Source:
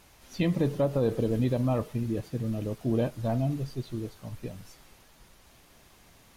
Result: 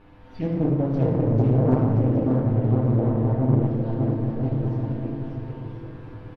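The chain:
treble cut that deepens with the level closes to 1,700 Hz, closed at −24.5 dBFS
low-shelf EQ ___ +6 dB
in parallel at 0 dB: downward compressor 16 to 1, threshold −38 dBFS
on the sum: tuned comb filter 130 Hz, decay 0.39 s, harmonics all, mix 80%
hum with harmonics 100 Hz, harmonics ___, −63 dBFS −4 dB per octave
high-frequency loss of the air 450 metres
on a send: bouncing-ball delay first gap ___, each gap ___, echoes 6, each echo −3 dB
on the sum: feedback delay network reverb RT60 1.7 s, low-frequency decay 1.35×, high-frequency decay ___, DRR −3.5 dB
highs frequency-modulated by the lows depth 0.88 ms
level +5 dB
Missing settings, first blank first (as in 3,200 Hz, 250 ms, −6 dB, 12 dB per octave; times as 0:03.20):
160 Hz, 17, 590 ms, 0.75×, 0.7×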